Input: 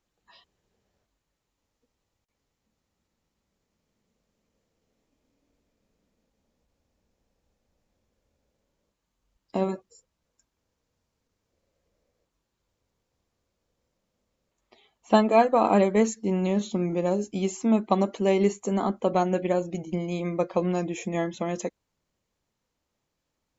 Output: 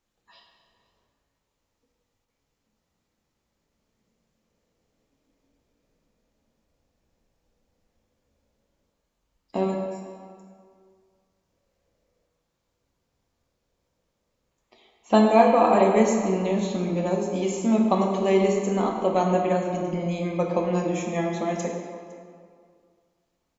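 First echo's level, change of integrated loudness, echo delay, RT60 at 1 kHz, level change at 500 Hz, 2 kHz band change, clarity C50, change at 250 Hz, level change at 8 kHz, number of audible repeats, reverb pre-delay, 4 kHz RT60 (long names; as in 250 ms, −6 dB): −22.0 dB, +2.5 dB, 508 ms, 2.1 s, +2.5 dB, +2.0 dB, 3.0 dB, +2.0 dB, can't be measured, 1, 14 ms, 1.5 s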